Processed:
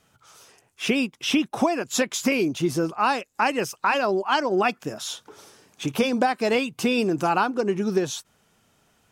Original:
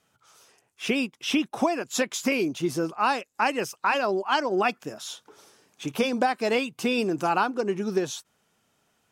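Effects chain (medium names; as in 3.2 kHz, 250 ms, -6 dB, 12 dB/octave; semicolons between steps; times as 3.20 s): bass shelf 97 Hz +10 dB; in parallel at -1.5 dB: compression, threshold -32 dBFS, peak gain reduction 14 dB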